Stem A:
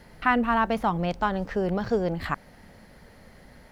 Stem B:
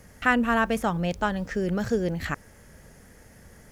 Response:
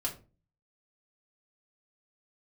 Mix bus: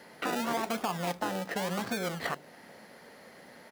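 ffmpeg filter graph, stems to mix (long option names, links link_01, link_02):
-filter_complex "[0:a]acompressor=threshold=-31dB:ratio=6,volume=2dB,asplit=2[link_01][link_02];[1:a]acrusher=samples=32:mix=1:aa=0.000001:lfo=1:lforange=19.2:lforate=0.9,adelay=0.6,volume=-6dB,asplit=2[link_03][link_04];[link_04]volume=-10dB[link_05];[link_02]apad=whole_len=163821[link_06];[link_03][link_06]sidechaingate=range=-33dB:threshold=-46dB:ratio=16:detection=peak[link_07];[2:a]atrim=start_sample=2205[link_08];[link_05][link_08]afir=irnorm=-1:irlink=0[link_09];[link_01][link_07][link_09]amix=inputs=3:normalize=0,highpass=290,alimiter=limit=-20.5dB:level=0:latency=1:release=36"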